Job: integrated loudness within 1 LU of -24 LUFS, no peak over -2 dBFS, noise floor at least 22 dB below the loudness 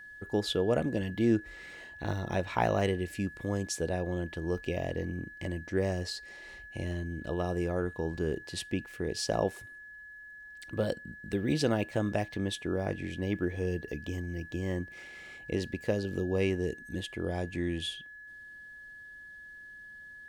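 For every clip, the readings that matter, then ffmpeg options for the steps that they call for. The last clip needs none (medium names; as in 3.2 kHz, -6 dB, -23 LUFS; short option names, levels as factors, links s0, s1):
steady tone 1.7 kHz; tone level -46 dBFS; loudness -33.0 LUFS; peak level -12.5 dBFS; loudness target -24.0 LUFS
-> -af "bandreject=f=1700:w=30"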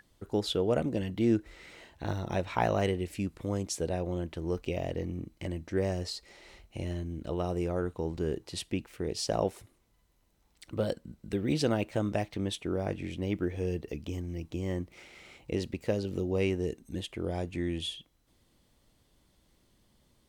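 steady tone not found; loudness -33.0 LUFS; peak level -12.5 dBFS; loudness target -24.0 LUFS
-> -af "volume=2.82"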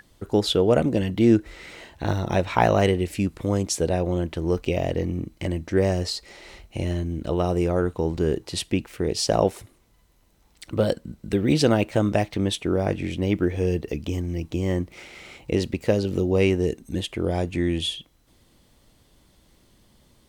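loudness -24.0 LUFS; peak level -3.5 dBFS; noise floor -60 dBFS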